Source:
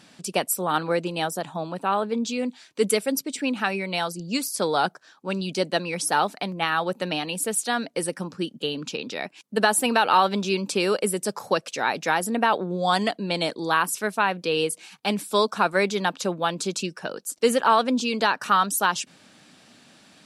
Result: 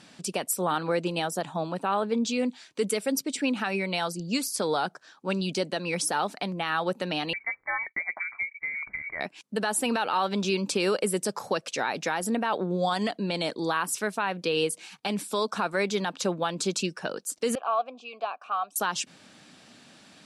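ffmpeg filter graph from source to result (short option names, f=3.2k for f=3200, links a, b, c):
-filter_complex "[0:a]asettb=1/sr,asplit=3[a][b][c];[a]atrim=end=7.334[d];[b]atrim=start=7.33:end=9.21,asetpts=PTS-STARTPTS,afade=t=in:d=0.004:c=qsin,afade=t=out:st=1.876:d=0.004:c=qsin,agate=range=-33dB:threshold=-45dB:ratio=3:release=100:detection=peak,acompressor=threshold=-31dB:ratio=1.5:attack=3.2:release=140:knee=1:detection=peak,lowpass=f=2.1k:t=q:w=0.5098,lowpass=f=2.1k:t=q:w=0.6013,lowpass=f=2.1k:t=q:w=0.9,lowpass=f=2.1k:t=q:w=2.563,afreqshift=-2500[e];[c]atrim=start=9.206[f];[d][e]acrossfade=d=0.004:c1=hsin:c2=qsin[g];[g][f]acrossfade=d=0.004:c1=qsin:c2=hsin,asettb=1/sr,asplit=3[h][i][j];[h]atrim=end=17.554[k];[i]atrim=start=17.55:end=18.76,asetpts=PTS-STARTPTS,afade=t=in:d=0.004:c=qsin,afade=t=out:st=1.206:d=0.004:c=qsin,asplit=3[l][m][n];[l]bandpass=f=730:t=q:w=8,volume=0dB[o];[m]bandpass=f=1.09k:t=q:w=8,volume=-6dB[p];[n]bandpass=f=2.44k:t=q:w=8,volume=-9dB[q];[o][p][q]amix=inputs=3:normalize=0,lowshelf=f=140:g=-11.5[r];[j]atrim=start=18.756[s];[k][r]acrossfade=d=0.004:c1=hsin:c2=qsin[t];[t][s]acrossfade=d=0.004:c1=qsin:c2=hsin,lowpass=11k,alimiter=limit=-16dB:level=0:latency=1:release=106"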